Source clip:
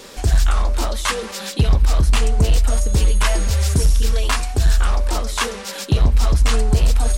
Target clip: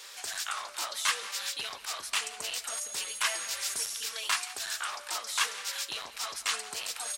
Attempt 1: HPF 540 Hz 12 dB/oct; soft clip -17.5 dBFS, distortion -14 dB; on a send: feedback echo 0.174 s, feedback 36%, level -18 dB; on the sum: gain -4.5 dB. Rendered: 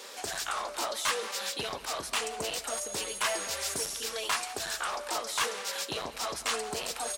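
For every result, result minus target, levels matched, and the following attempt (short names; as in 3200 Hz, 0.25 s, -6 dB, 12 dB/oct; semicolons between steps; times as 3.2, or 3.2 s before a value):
500 Hz band +11.5 dB; soft clip: distortion +11 dB
HPF 1300 Hz 12 dB/oct; soft clip -17.5 dBFS, distortion -15 dB; on a send: feedback echo 0.174 s, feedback 36%, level -18 dB; on the sum: gain -4.5 dB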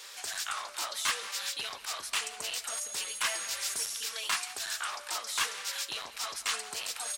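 soft clip: distortion +9 dB
HPF 1300 Hz 12 dB/oct; soft clip -10.5 dBFS, distortion -25 dB; on a send: feedback echo 0.174 s, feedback 36%, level -18 dB; on the sum: gain -4.5 dB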